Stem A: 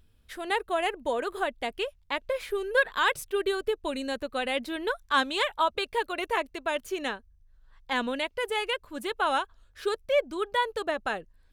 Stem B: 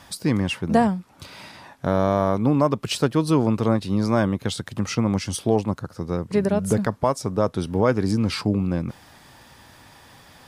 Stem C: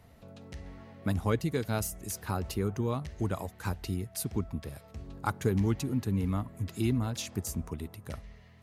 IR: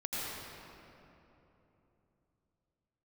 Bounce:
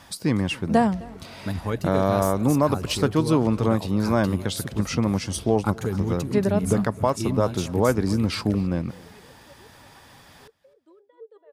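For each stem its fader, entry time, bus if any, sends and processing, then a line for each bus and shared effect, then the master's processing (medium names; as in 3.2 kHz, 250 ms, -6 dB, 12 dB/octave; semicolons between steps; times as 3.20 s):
-9.5 dB, 0.55 s, no send, echo send -11.5 dB, compressor with a negative ratio -35 dBFS, ratio -1; ladder high-pass 370 Hz, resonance 40%; spectral contrast expander 1.5:1
-1.0 dB, 0.00 s, no send, echo send -23 dB, none
+1.0 dB, 0.40 s, no send, echo send -15.5 dB, none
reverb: none
echo: feedback delay 259 ms, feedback 28%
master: none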